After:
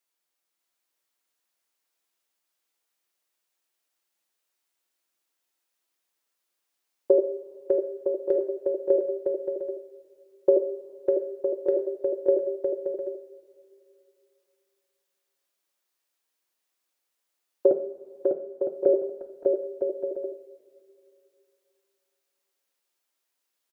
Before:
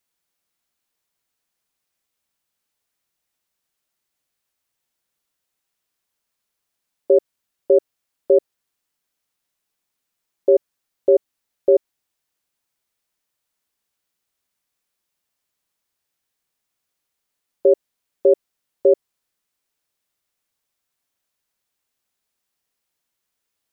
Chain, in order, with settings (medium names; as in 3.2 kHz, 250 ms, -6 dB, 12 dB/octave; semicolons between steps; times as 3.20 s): high-pass 290 Hz 12 dB/octave; dynamic bell 420 Hz, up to +4 dB, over -25 dBFS, Q 0.81; 17.71–18.86 s: compression, threshold -32 dBFS, peak gain reduction 22.5 dB; on a send: bouncing-ball echo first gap 600 ms, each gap 0.6×, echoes 5; on the sum: two-slope reverb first 0.49 s, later 2.8 s, from -18 dB, DRR 5.5 dB; trim -4.5 dB